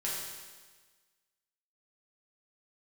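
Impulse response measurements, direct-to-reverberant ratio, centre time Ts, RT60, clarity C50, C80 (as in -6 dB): -7.0 dB, 86 ms, 1.4 s, -0.5 dB, 2.0 dB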